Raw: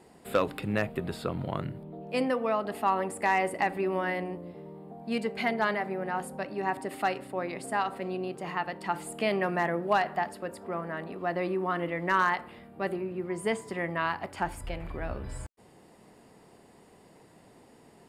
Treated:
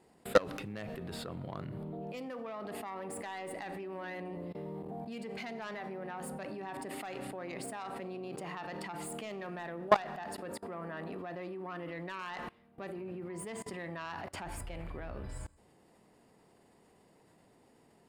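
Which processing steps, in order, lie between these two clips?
self-modulated delay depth 0.087 ms; Schroeder reverb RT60 0.94 s, combs from 30 ms, DRR 19 dB; level quantiser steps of 23 dB; gain +4.5 dB

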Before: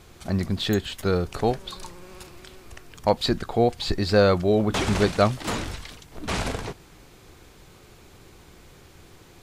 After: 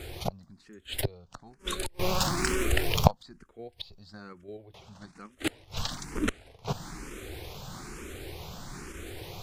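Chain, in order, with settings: flipped gate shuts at -21 dBFS, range -33 dB; 1.99–3.11 sample leveller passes 3; in parallel at +2.5 dB: level quantiser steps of 13 dB; 1.04–1.47 on the sum: Bessel low-pass 8300 Hz; endless phaser +1.1 Hz; gain +5 dB

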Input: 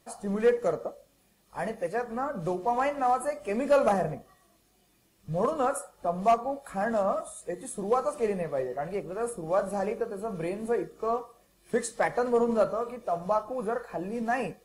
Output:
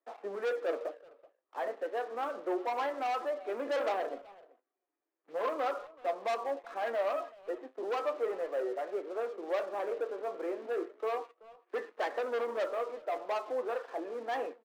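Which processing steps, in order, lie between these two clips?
LPF 1900 Hz 24 dB/oct; sample leveller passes 3; steep high-pass 290 Hz 48 dB/oct; speakerphone echo 0.38 s, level -20 dB; flange 0.33 Hz, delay 4.3 ms, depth 3.7 ms, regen +71%; gain -8.5 dB

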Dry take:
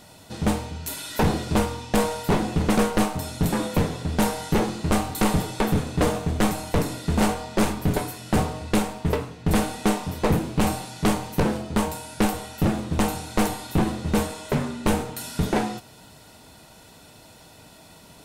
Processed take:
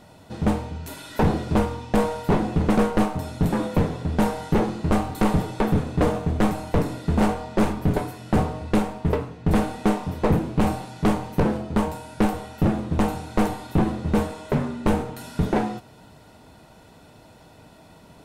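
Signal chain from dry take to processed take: high shelf 2700 Hz -12 dB; gain +1.5 dB

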